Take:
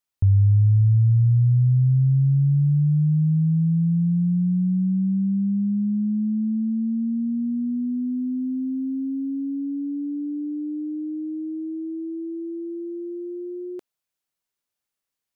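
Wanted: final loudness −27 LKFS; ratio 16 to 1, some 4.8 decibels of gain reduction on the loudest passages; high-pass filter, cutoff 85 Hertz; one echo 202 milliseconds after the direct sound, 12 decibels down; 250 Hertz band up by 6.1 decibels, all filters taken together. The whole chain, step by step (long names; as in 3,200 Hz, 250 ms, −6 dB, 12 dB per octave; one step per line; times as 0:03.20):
high-pass filter 85 Hz
parametric band 250 Hz +8.5 dB
downward compressor 16 to 1, threshold −19 dBFS
single-tap delay 202 ms −12 dB
level −4.5 dB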